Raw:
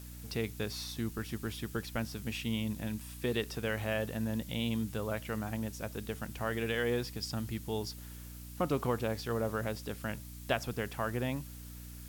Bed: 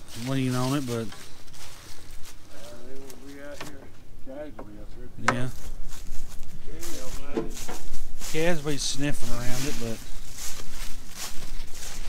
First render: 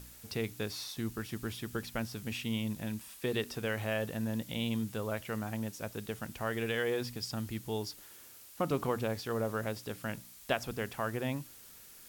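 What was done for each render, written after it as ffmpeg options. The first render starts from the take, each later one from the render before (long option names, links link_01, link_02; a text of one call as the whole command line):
ffmpeg -i in.wav -af "bandreject=frequency=60:width_type=h:width=4,bandreject=frequency=120:width_type=h:width=4,bandreject=frequency=180:width_type=h:width=4,bandreject=frequency=240:width_type=h:width=4,bandreject=frequency=300:width_type=h:width=4" out.wav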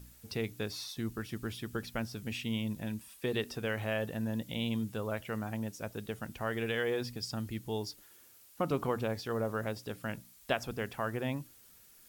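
ffmpeg -i in.wav -af "afftdn=noise_reduction=7:noise_floor=-54" out.wav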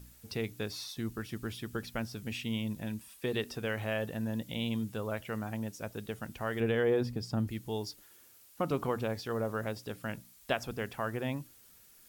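ffmpeg -i in.wav -filter_complex "[0:a]asettb=1/sr,asplit=3[link_01][link_02][link_03];[link_01]atrim=end=6.604[link_04];[link_02]atrim=start=6.6:end=7.48,asetpts=PTS-STARTPTS,afade=type=in:duration=0.004:curve=qsin,afade=type=out:start_time=0.876:duration=0.004:curve=qsin,tiltshelf=frequency=1400:gain=6.5[link_05];[link_03]atrim=start=7.476[link_06];[link_04][link_05]acrossfade=duration=0.004:curve1=hsin:curve2=qsin[link_07];[link_07][link_06]acrossfade=duration=0.004:curve1=qsin:curve2=hsin" out.wav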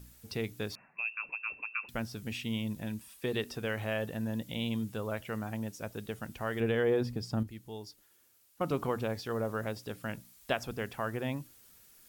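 ffmpeg -i in.wav -filter_complex "[0:a]asettb=1/sr,asplit=3[link_01][link_02][link_03];[link_01]atrim=end=0.754[link_04];[link_02]atrim=start=0.75:end=1.89,asetpts=PTS-STARTPTS,afade=type=in:duration=0.004:curve=qsin,afade=type=out:start_time=1.136:duration=0.004:curve=qsin,lowpass=frequency=2400:width_type=q:width=0.5098,lowpass=frequency=2400:width_type=q:width=0.6013,lowpass=frequency=2400:width_type=q:width=0.9,lowpass=frequency=2400:width_type=q:width=2.563,afreqshift=-2800[link_05];[link_03]atrim=start=1.886[link_06];[link_04][link_05]acrossfade=duration=0.004:curve1=hsin:curve2=qsin[link_07];[link_07][link_06]acrossfade=duration=0.004:curve1=qsin:curve2=hsin,asplit=3[link_08][link_09][link_10];[link_08]atrim=end=7.432[link_11];[link_09]atrim=start=7.428:end=8.612,asetpts=PTS-STARTPTS,volume=-7.5dB[link_12];[link_10]atrim=start=8.608[link_13];[link_11][link_12]acrossfade=duration=0.004:curve1=hsin:curve2=hsin[link_14];[link_14][link_13]acrossfade=duration=0.004:curve1=hsin:curve2=hsin" out.wav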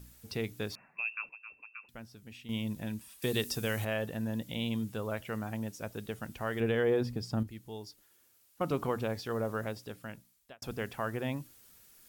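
ffmpeg -i in.wav -filter_complex "[0:a]asettb=1/sr,asplit=3[link_01][link_02][link_03];[link_01]atrim=end=3.224[link_04];[link_02]atrim=start=3.22:end=3.85,asetpts=PTS-STARTPTS,afade=type=in:duration=0.004:curve=qsin,afade=type=out:start_time=0.626:duration=0.004:curve=qsin,bass=frequency=250:gain=4,treble=frequency=4000:gain=13[link_05];[link_03]atrim=start=3.846[link_06];[link_04][link_05]acrossfade=duration=0.004:curve1=hsin:curve2=qsin[link_07];[link_07][link_06]acrossfade=duration=0.004:curve1=qsin:curve2=hsin,asplit=4[link_08][link_09][link_10][link_11];[link_08]atrim=end=1.29,asetpts=PTS-STARTPTS,afade=type=out:start_time=1.1:duration=0.19:curve=log:silence=0.266073[link_12];[link_09]atrim=start=1.29:end=2.49,asetpts=PTS-STARTPTS,volume=-11.5dB[link_13];[link_10]atrim=start=2.49:end=10.62,asetpts=PTS-STARTPTS,afade=type=in:duration=0.19:curve=log:silence=0.266073,afade=type=out:start_time=7.08:duration=1.05[link_14];[link_11]atrim=start=10.62,asetpts=PTS-STARTPTS,afade=type=in:duration=0.004:curve=hsin[link_15];[link_12][link_13][link_14][link_15]concat=n=4:v=0:a=1" out.wav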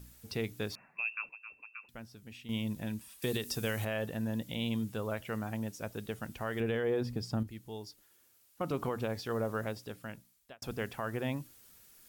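ffmpeg -i in.wav -af "alimiter=limit=-23.5dB:level=0:latency=1:release=128" out.wav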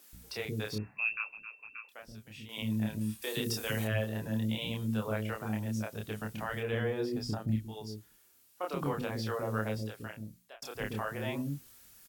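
ffmpeg -i in.wav -filter_complex "[0:a]asplit=2[link_01][link_02];[link_02]adelay=28,volume=-2.5dB[link_03];[link_01][link_03]amix=inputs=2:normalize=0,acrossover=split=400[link_04][link_05];[link_04]adelay=130[link_06];[link_06][link_05]amix=inputs=2:normalize=0" out.wav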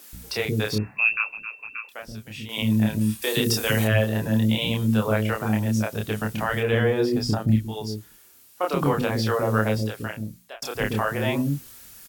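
ffmpeg -i in.wav -af "volume=11.5dB" out.wav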